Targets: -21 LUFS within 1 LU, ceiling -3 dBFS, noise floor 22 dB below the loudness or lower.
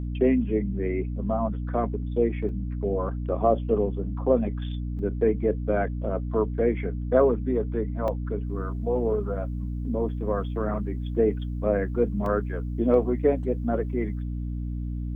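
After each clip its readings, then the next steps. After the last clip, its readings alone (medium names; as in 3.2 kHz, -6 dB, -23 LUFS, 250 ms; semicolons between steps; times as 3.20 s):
dropouts 4; longest dropout 2.2 ms; hum 60 Hz; highest harmonic 300 Hz; hum level -28 dBFS; loudness -26.5 LUFS; peak level -8.0 dBFS; loudness target -21.0 LUFS
-> interpolate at 2.49/4.99/8.08/12.26 s, 2.2 ms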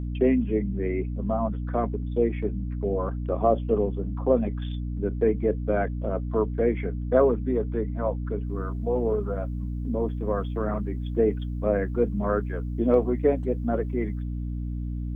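dropouts 0; hum 60 Hz; highest harmonic 300 Hz; hum level -28 dBFS
-> de-hum 60 Hz, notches 5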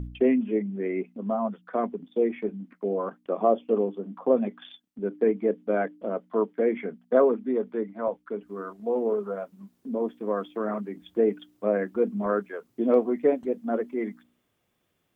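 hum not found; loudness -27.5 LUFS; peak level -8.0 dBFS; loudness target -21.0 LUFS
-> trim +6.5 dB; peak limiter -3 dBFS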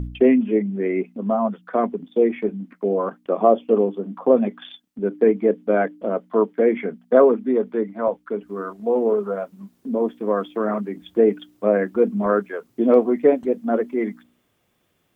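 loudness -21.0 LUFS; peak level -3.0 dBFS; noise floor -68 dBFS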